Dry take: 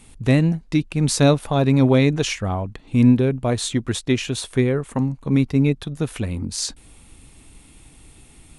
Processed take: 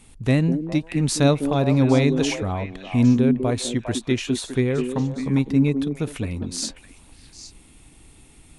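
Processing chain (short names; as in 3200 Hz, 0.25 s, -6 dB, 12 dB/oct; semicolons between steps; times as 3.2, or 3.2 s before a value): delay with a stepping band-pass 0.202 s, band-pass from 300 Hz, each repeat 1.4 oct, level -3 dB; ending taper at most 450 dB/s; gain -2.5 dB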